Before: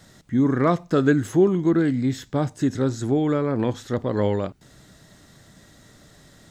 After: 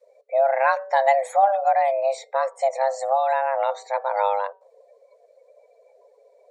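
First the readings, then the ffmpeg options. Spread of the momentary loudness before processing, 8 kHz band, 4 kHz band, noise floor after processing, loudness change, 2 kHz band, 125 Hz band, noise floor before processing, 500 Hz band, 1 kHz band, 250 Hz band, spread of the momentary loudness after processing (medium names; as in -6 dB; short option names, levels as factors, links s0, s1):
7 LU, -2.0 dB, -3.0 dB, -59 dBFS, +0.5 dB, +4.5 dB, under -40 dB, -53 dBFS, +2.0 dB, +12.5 dB, under -40 dB, 7 LU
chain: -af "afreqshift=400,bandreject=f=191.1:t=h:w=4,bandreject=f=382.2:t=h:w=4,bandreject=f=573.3:t=h:w=4,bandreject=f=764.4:t=h:w=4,bandreject=f=955.5:t=h:w=4,bandreject=f=1146.6:t=h:w=4,bandreject=f=1337.7:t=h:w=4,bandreject=f=1528.8:t=h:w=4,bandreject=f=1719.9:t=h:w=4,bandreject=f=1911:t=h:w=4,bandreject=f=2102.1:t=h:w=4,bandreject=f=2293.2:t=h:w=4,bandreject=f=2484.3:t=h:w=4,bandreject=f=2675.4:t=h:w=4,bandreject=f=2866.5:t=h:w=4,bandreject=f=3057.6:t=h:w=4,bandreject=f=3248.7:t=h:w=4,bandreject=f=3439.8:t=h:w=4,bandreject=f=3630.9:t=h:w=4,bandreject=f=3822:t=h:w=4,bandreject=f=4013.1:t=h:w=4,bandreject=f=4204.2:t=h:w=4,bandreject=f=4395.3:t=h:w=4,bandreject=f=4586.4:t=h:w=4,bandreject=f=4777.5:t=h:w=4,bandreject=f=4968.6:t=h:w=4,bandreject=f=5159.7:t=h:w=4,bandreject=f=5350.8:t=h:w=4,bandreject=f=5541.9:t=h:w=4,bandreject=f=5733:t=h:w=4,afftdn=nr=26:nf=-44"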